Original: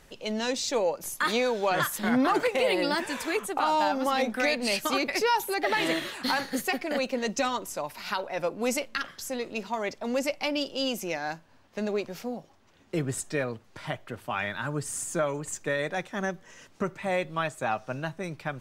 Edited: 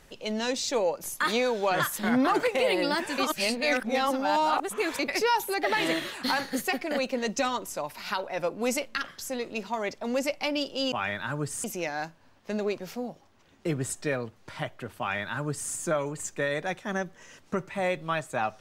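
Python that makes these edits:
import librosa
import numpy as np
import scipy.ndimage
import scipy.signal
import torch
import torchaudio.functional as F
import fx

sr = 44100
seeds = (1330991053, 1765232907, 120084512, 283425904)

y = fx.edit(x, sr, fx.reverse_span(start_s=3.18, length_s=1.81),
    fx.duplicate(start_s=14.27, length_s=0.72, to_s=10.92), tone=tone)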